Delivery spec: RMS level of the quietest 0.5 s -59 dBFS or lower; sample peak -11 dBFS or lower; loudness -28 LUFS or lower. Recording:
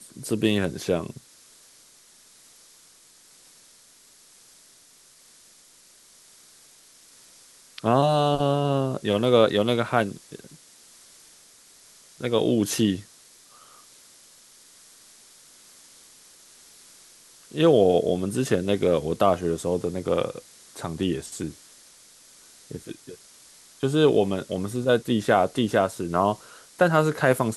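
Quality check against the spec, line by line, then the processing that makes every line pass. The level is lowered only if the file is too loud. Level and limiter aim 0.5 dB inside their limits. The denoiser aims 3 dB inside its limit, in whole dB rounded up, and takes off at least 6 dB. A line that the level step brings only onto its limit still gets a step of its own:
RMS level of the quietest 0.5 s -55 dBFS: fail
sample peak -4.5 dBFS: fail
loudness -23.5 LUFS: fail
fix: trim -5 dB; peak limiter -11.5 dBFS

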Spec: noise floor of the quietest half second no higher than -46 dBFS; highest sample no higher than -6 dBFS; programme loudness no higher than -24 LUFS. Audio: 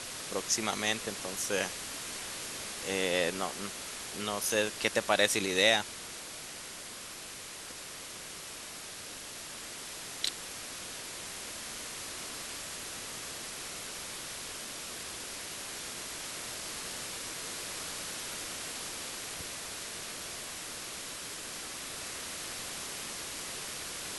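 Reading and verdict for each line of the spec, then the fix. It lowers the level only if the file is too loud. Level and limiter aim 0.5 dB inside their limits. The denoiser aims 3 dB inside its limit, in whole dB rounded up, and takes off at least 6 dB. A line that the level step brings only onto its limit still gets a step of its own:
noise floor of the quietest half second -45 dBFS: fail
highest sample -10.5 dBFS: pass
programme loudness -35.0 LUFS: pass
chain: noise reduction 6 dB, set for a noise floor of -45 dBFS

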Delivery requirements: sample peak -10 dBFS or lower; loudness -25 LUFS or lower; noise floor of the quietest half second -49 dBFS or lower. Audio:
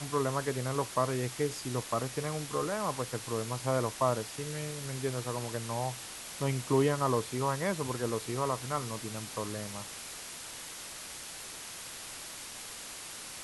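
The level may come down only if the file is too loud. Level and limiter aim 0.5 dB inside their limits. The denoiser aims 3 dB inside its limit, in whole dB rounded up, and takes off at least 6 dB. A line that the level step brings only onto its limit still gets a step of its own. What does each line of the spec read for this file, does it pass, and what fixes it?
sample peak -14.5 dBFS: pass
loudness -34.5 LUFS: pass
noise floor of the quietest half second -44 dBFS: fail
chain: noise reduction 8 dB, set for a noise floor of -44 dBFS

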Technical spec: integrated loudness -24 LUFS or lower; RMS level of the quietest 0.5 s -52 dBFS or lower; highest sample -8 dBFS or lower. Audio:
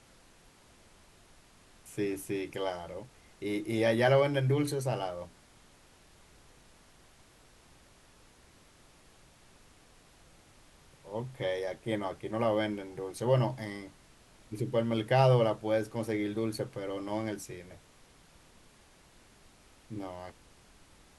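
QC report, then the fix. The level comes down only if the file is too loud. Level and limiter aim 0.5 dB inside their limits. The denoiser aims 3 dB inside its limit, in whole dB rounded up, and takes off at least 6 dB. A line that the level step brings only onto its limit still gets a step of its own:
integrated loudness -31.5 LUFS: pass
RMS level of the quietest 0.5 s -60 dBFS: pass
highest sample -12.5 dBFS: pass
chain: none needed

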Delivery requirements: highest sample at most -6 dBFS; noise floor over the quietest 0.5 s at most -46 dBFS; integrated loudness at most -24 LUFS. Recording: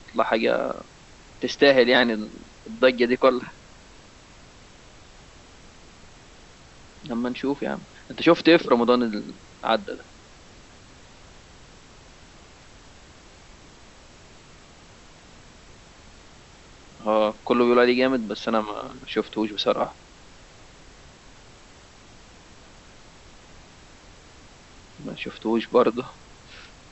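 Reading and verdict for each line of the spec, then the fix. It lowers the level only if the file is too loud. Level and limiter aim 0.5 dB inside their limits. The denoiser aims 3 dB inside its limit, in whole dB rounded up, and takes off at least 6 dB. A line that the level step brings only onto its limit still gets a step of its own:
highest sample -4.5 dBFS: fail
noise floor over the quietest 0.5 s -49 dBFS: pass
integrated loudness -22.5 LUFS: fail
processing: trim -2 dB

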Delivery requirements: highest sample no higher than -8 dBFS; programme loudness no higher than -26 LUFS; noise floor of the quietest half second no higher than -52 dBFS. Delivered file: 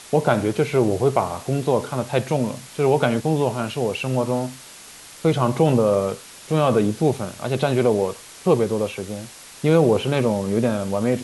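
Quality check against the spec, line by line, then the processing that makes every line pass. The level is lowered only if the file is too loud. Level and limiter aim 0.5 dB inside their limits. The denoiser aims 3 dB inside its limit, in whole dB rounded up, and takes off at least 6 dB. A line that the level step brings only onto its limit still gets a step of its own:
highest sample -4.0 dBFS: fail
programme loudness -21.5 LUFS: fail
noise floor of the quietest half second -42 dBFS: fail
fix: noise reduction 8 dB, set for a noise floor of -42 dBFS; trim -5 dB

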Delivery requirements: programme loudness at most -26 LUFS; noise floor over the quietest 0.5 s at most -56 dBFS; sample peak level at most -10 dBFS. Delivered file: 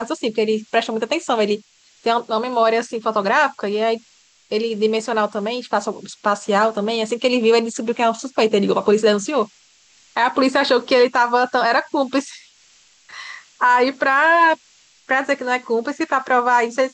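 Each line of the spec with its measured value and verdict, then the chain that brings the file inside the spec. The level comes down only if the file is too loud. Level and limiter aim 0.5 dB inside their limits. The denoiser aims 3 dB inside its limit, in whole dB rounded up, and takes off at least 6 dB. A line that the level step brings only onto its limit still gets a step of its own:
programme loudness -18.5 LUFS: fail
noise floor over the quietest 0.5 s -54 dBFS: fail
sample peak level -5.5 dBFS: fail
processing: trim -8 dB

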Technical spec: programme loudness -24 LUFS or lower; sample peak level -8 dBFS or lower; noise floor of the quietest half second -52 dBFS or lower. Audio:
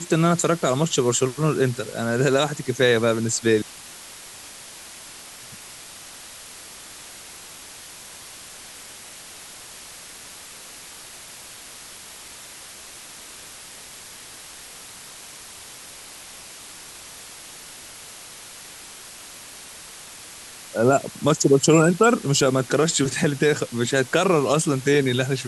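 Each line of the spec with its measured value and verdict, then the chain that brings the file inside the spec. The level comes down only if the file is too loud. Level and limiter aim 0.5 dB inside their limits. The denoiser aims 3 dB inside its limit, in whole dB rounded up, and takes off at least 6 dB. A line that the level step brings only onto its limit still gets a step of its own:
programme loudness -20.5 LUFS: fail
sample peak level -4.5 dBFS: fail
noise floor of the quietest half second -41 dBFS: fail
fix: noise reduction 10 dB, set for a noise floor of -41 dBFS; trim -4 dB

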